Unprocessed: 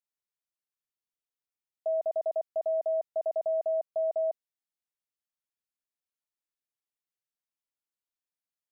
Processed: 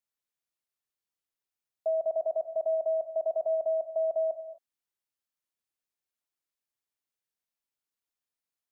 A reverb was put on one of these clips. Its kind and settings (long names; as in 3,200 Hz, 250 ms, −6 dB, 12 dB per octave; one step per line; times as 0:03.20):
reverb whose tail is shaped and stops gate 280 ms flat, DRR 9.5 dB
level +1 dB